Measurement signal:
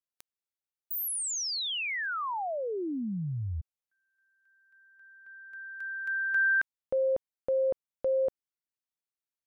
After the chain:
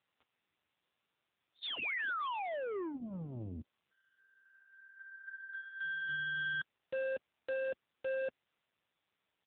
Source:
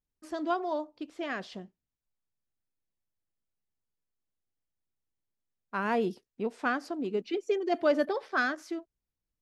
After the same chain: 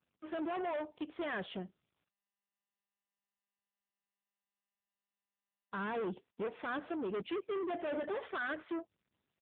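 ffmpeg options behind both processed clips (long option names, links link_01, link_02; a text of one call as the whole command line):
ffmpeg -i in.wav -af "equalizer=frequency=250:width_type=o:width=0.37:gain=-10.5,alimiter=level_in=1.5dB:limit=-24dB:level=0:latency=1:release=20,volume=-1.5dB,aresample=8000,asoftclip=type=tanh:threshold=-40dB,aresample=44100,volume=6dB" -ar 8000 -c:a libopencore_amrnb -b:a 6700 out.amr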